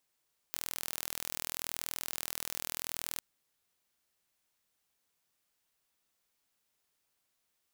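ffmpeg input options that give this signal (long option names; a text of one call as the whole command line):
ffmpeg -f lavfi -i "aevalsrc='0.335*eq(mod(n,1081),0)':duration=2.67:sample_rate=44100" out.wav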